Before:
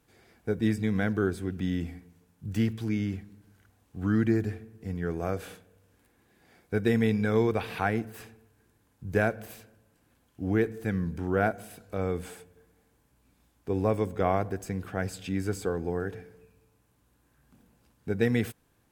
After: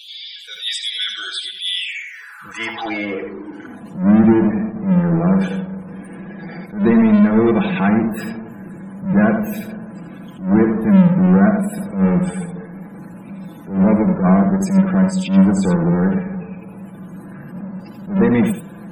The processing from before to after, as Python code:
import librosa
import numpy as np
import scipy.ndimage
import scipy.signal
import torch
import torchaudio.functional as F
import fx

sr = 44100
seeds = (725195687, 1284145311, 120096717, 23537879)

y = fx.highpass(x, sr, hz=46.0, slope=6)
y = y + 0.52 * np.pad(y, (int(6.0 * sr / 1000.0), 0))[:len(y)]
y = fx.filter_sweep_highpass(y, sr, from_hz=3400.0, to_hz=190.0, start_s=1.7, end_s=3.9, q=7.1)
y = fx.power_curve(y, sr, exponent=0.5)
y = fx.spec_topn(y, sr, count=64)
y = y + 10.0 ** (-7.0 / 20.0) * np.pad(y, (int(83 * sr / 1000.0), 0))[:len(y)]
y = fx.attack_slew(y, sr, db_per_s=150.0)